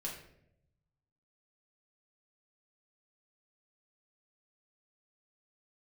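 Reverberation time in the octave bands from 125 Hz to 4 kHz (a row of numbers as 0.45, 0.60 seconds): 1.6, 1.1, 0.90, 0.60, 0.60, 0.50 seconds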